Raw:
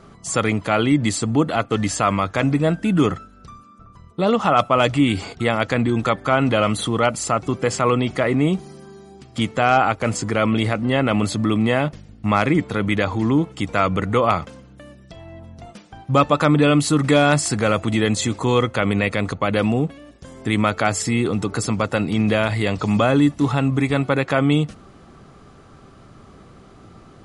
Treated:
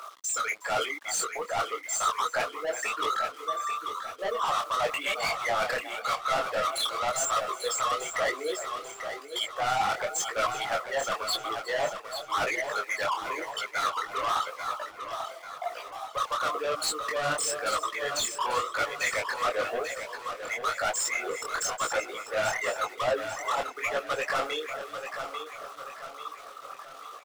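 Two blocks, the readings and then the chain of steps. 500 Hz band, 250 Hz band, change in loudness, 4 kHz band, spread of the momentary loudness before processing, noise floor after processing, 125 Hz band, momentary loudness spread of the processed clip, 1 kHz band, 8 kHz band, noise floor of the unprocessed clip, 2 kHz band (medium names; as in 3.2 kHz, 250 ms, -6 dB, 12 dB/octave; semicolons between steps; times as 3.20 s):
-10.5 dB, -29.0 dB, -10.0 dB, -4.5 dB, 6 LU, -46 dBFS, -30.0 dB, 9 LU, -6.0 dB, -2.0 dB, -47 dBFS, -5.5 dB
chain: resonances exaggerated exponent 3; steep high-pass 710 Hz 36 dB/octave; reverse; compression 4:1, threshold -38 dBFS, peak gain reduction 20.5 dB; reverse; echo from a far wall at 62 m, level -23 dB; word length cut 12-bit, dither none; overdrive pedal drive 29 dB, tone 6.8 kHz, clips at -22.5 dBFS; on a send: feedback delay 841 ms, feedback 45%, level -8.5 dB; on the sum: detune thickener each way 33 cents; trim +5.5 dB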